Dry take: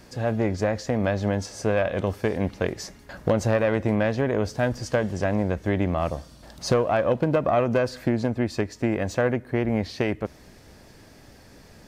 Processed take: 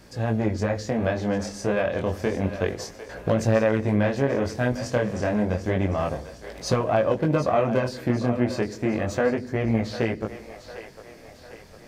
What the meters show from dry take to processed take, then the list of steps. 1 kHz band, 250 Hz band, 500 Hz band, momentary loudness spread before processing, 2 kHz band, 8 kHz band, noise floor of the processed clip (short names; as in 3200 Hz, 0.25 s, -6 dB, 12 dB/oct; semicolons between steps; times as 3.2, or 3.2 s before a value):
0.0 dB, +0.5 dB, 0.0 dB, 6 LU, 0.0 dB, 0.0 dB, -46 dBFS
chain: chorus 0.3 Hz, delay 17.5 ms, depth 7.1 ms; split-band echo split 420 Hz, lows 85 ms, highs 0.751 s, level -12 dB; gain +2.5 dB